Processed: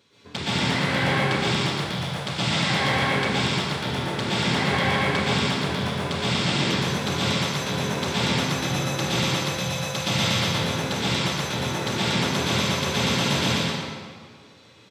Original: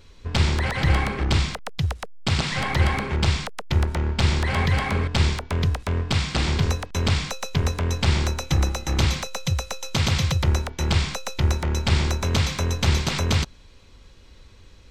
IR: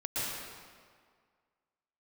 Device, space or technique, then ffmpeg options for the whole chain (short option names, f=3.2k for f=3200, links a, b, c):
PA in a hall: -filter_complex "[0:a]highpass=f=140:w=0.5412,highpass=f=140:w=1.3066,equalizer=f=3.5k:t=o:w=0.23:g=5,aecho=1:1:139:0.562[a];[1:a]atrim=start_sample=2205[b];[a][b]afir=irnorm=-1:irlink=0,volume=-4dB"